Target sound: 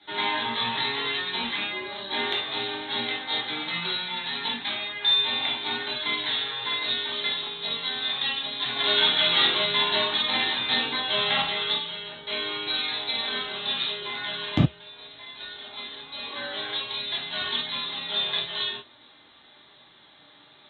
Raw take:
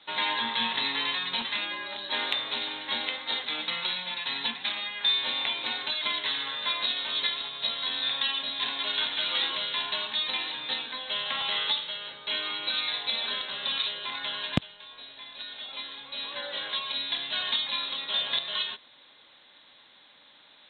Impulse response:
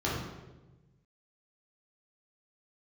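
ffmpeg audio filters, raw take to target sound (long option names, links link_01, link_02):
-filter_complex "[0:a]flanger=delay=0.4:depth=6.7:regen=-69:speed=0.17:shape=triangular,asettb=1/sr,asplit=3[link_01][link_02][link_03];[link_01]atrim=end=8.764[link_04];[link_02]atrim=start=8.76:end=11.41,asetpts=PTS-STARTPTS,afade=type=in:duration=0.004:curve=qsin,afade=type=out:start_time=2.646:duration=0.004:curve=qsin,acontrast=46[link_05];[link_03]atrim=start=11.406[link_06];[link_04][link_05]acrossfade=duration=0.004:curve1=hsin:curve2=qsin[link_07];[link_07][link_06]acrossfade=duration=0.004:curve1=qsin:curve2=hsin[link_08];[1:a]atrim=start_sample=2205,atrim=end_sample=3528[link_09];[link_08][link_09]afir=irnorm=-1:irlink=0"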